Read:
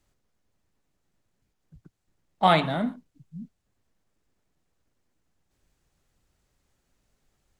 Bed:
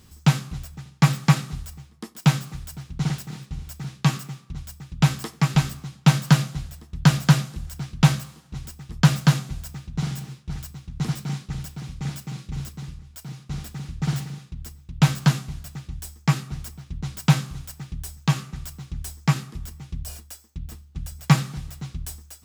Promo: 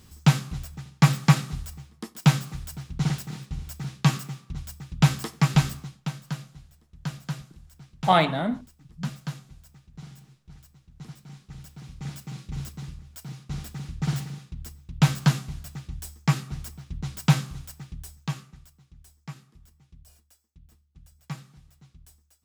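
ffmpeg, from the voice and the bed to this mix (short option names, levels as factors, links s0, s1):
-filter_complex "[0:a]adelay=5650,volume=1.06[s0];[1:a]volume=5.01,afade=t=out:st=5.75:d=0.34:silence=0.158489,afade=t=in:st=11.31:d=1.35:silence=0.188365,afade=t=out:st=17.41:d=1.31:silence=0.133352[s1];[s0][s1]amix=inputs=2:normalize=0"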